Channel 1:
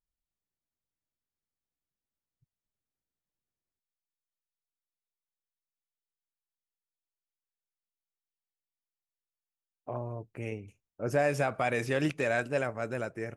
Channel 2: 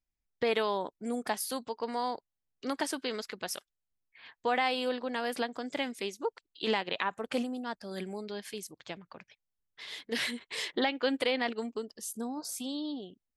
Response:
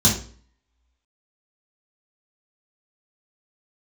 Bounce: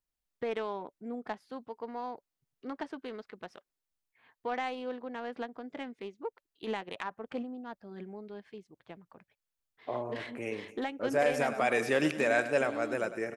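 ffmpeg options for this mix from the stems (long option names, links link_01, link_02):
-filter_complex "[0:a]highpass=240,volume=2.5dB,asplit=2[link_01][link_02];[link_02]volume=-13.5dB[link_03];[1:a]bandreject=frequency=570:width=14,adynamicsmooth=sensitivity=1:basefreq=1600,volume=-4.5dB,asplit=2[link_04][link_05];[link_05]apad=whole_len=589510[link_06];[link_01][link_06]sidechaincompress=threshold=-38dB:ratio=3:attack=41:release=271[link_07];[link_03]aecho=0:1:102|204|306|408|510|612|714:1|0.5|0.25|0.125|0.0625|0.0312|0.0156[link_08];[link_07][link_04][link_08]amix=inputs=3:normalize=0"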